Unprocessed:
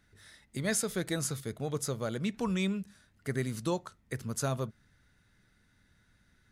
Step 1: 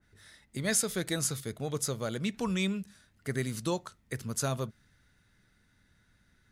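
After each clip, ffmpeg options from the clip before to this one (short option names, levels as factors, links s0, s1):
-af "adynamicequalizer=threshold=0.00501:dfrequency=2000:dqfactor=0.7:tfrequency=2000:tqfactor=0.7:attack=5:release=100:ratio=0.375:range=2:mode=boostabove:tftype=highshelf"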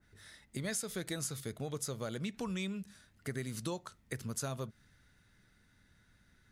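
-af "acompressor=threshold=0.0141:ratio=3"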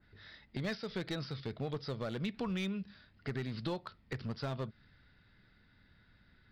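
-af "aresample=11025,aresample=44100,aeval=exprs='clip(val(0),-1,0.0168)':c=same,volume=1.26"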